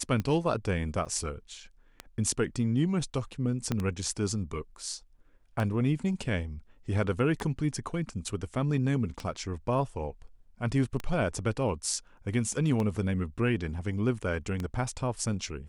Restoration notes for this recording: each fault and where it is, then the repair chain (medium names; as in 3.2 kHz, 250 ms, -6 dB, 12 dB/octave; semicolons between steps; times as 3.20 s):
tick 33 1/3 rpm -19 dBFS
1.05–1.06 s: dropout 6.3 ms
3.72 s: pop -15 dBFS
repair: de-click; interpolate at 1.05 s, 6.3 ms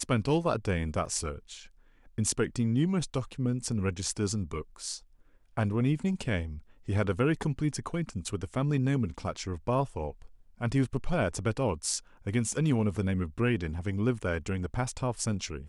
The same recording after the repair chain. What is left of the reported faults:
3.72 s: pop